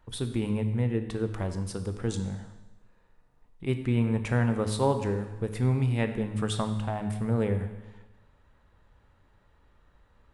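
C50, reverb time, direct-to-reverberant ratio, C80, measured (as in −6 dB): 9.0 dB, 1.1 s, 7.5 dB, 11.0 dB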